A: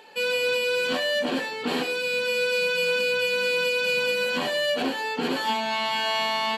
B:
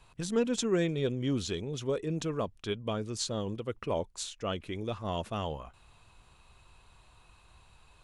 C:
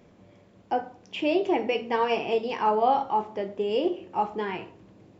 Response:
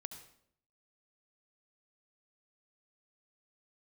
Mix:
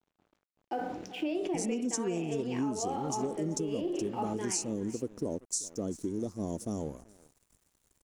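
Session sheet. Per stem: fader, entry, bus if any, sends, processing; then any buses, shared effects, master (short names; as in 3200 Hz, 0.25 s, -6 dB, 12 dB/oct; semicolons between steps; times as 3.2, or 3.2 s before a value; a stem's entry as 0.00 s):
off
-2.5 dB, 1.35 s, no send, echo send -21 dB, EQ curve 110 Hz 0 dB, 280 Hz +13 dB, 2800 Hz -27 dB, 5600 Hz +15 dB
-6.5 dB, 0.00 s, no send, echo send -16 dB, thirty-one-band EQ 100 Hz -9 dB, 315 Hz +8 dB, 1000 Hz -5 dB; sustainer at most 49 dB/s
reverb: off
echo: echo 0.385 s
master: crossover distortion -55 dBFS; compressor 10:1, threshold -29 dBFS, peak gain reduction 12 dB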